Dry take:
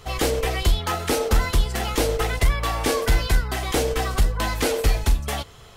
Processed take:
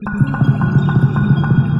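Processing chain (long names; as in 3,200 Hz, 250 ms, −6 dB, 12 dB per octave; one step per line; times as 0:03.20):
gate on every frequency bin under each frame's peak −10 dB strong
change of speed 3.22×
moving average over 21 samples
reverb whose tail is shaped and stops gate 480 ms flat, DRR 0.5 dB
level +6 dB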